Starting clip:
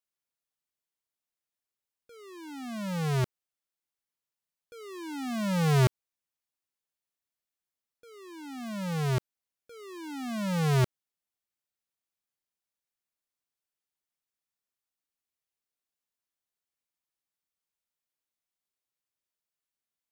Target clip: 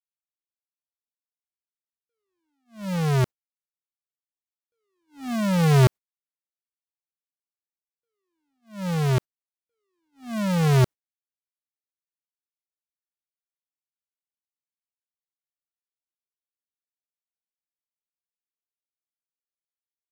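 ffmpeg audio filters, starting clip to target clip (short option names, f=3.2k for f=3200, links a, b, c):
-filter_complex "[0:a]agate=range=-42dB:threshold=-36dB:ratio=16:detection=peak,asplit=2[a][b];[b]acrusher=samples=16:mix=1:aa=0.000001:lfo=1:lforange=16:lforate=1.8,volume=-9.5dB[c];[a][c]amix=inputs=2:normalize=0,volume=4dB"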